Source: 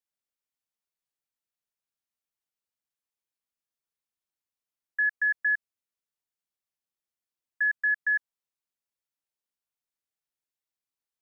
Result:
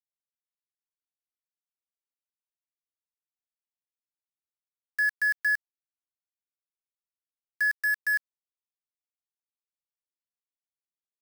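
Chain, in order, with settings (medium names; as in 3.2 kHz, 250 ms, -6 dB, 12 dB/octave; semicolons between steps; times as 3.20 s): 7.71–8.14 s: band-stop 1.5 kHz, Q 8.9; crossover distortion -55 dBFS; bit crusher 6-bit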